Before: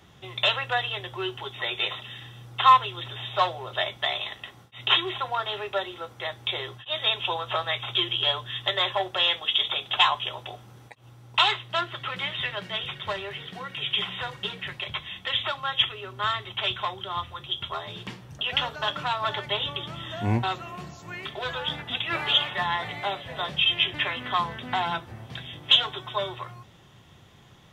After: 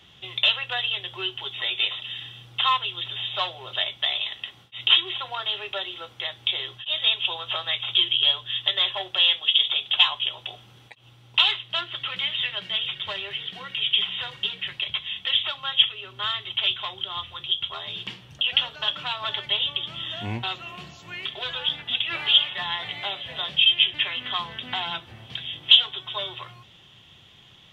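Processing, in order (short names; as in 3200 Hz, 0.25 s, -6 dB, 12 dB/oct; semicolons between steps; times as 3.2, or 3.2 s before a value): bell 3100 Hz +14.5 dB 0.91 oct; in parallel at 0 dB: compressor, threshold -26 dBFS, peak gain reduction 24 dB; on the sum: gain -10 dB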